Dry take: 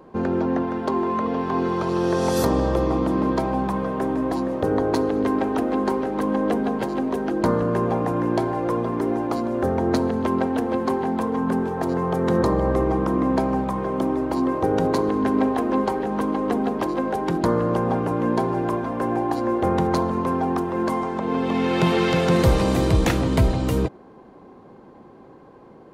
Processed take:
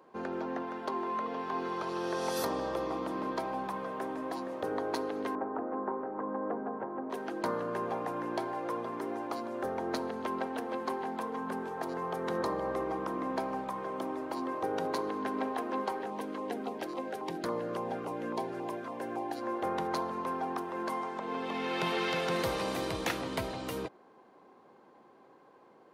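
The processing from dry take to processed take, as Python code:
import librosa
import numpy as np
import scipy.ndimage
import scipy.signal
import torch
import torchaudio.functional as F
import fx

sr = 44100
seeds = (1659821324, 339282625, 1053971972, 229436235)

y = fx.lowpass(x, sr, hz=1400.0, slope=24, at=(5.35, 7.1))
y = fx.filter_lfo_notch(y, sr, shape='saw_down', hz=3.6, low_hz=780.0, high_hz=1800.0, q=1.7, at=(16.1, 19.43))
y = fx.dynamic_eq(y, sr, hz=7400.0, q=2.7, threshold_db=-54.0, ratio=4.0, max_db=-5)
y = fx.highpass(y, sr, hz=760.0, slope=6)
y = y * librosa.db_to_amplitude(-6.5)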